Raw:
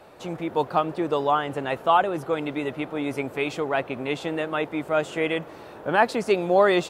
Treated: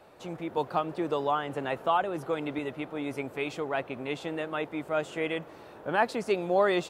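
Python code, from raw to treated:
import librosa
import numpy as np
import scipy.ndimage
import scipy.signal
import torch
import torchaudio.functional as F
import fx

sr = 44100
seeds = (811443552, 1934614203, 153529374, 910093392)

y = fx.band_squash(x, sr, depth_pct=40, at=(0.57, 2.59))
y = y * 10.0 ** (-6.0 / 20.0)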